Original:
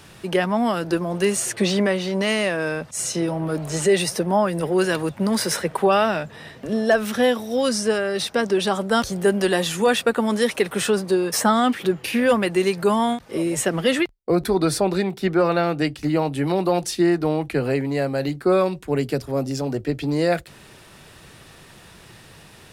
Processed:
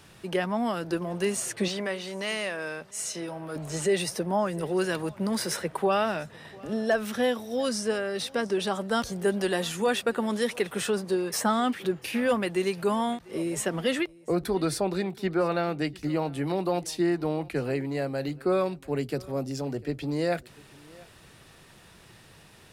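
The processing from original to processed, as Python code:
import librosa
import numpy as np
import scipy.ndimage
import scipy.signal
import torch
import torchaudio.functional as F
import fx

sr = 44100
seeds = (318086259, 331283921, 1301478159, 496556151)

y = fx.low_shelf(x, sr, hz=380.0, db=-10.0, at=(1.68, 3.56))
y = y + 10.0 ** (-23.5 / 20.0) * np.pad(y, (int(696 * sr / 1000.0), 0))[:len(y)]
y = F.gain(torch.from_numpy(y), -7.0).numpy()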